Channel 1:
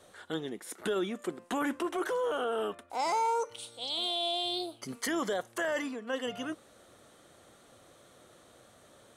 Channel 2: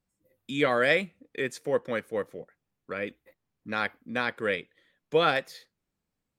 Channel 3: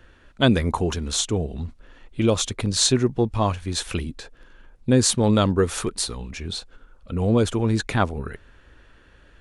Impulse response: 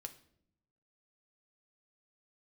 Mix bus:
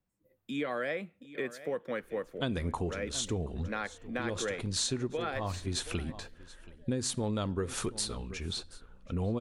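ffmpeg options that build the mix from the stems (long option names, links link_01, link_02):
-filter_complex "[0:a]alimiter=level_in=7dB:limit=-24dB:level=0:latency=1,volume=-7dB,asplit=3[link_01][link_02][link_03];[link_01]bandpass=frequency=530:width_type=q:width=8,volume=0dB[link_04];[link_02]bandpass=frequency=1840:width_type=q:width=8,volume=-6dB[link_05];[link_03]bandpass=frequency=2480:width_type=q:width=8,volume=-9dB[link_06];[link_04][link_05][link_06]amix=inputs=3:normalize=0,adelay=1500,volume=-14.5dB[link_07];[1:a]equalizer=frequency=6700:width_type=o:width=2.6:gain=-7.5,acrossover=split=160|2000[link_08][link_09][link_10];[link_08]acompressor=threshold=-57dB:ratio=4[link_11];[link_09]acompressor=threshold=-29dB:ratio=4[link_12];[link_10]acompressor=threshold=-41dB:ratio=4[link_13];[link_11][link_12][link_13]amix=inputs=3:normalize=0,volume=-1dB,asplit=3[link_14][link_15][link_16];[link_15]volume=-17.5dB[link_17];[2:a]adelay=2000,volume=-8dB,asplit=3[link_18][link_19][link_20];[link_19]volume=-6dB[link_21];[link_20]volume=-20.5dB[link_22];[link_16]apad=whole_len=502831[link_23];[link_18][link_23]sidechaincompress=threshold=-45dB:ratio=8:attack=16:release=219[link_24];[3:a]atrim=start_sample=2205[link_25];[link_21][link_25]afir=irnorm=-1:irlink=0[link_26];[link_17][link_22]amix=inputs=2:normalize=0,aecho=0:1:727:1[link_27];[link_07][link_14][link_24][link_26][link_27]amix=inputs=5:normalize=0,acompressor=threshold=-29dB:ratio=6"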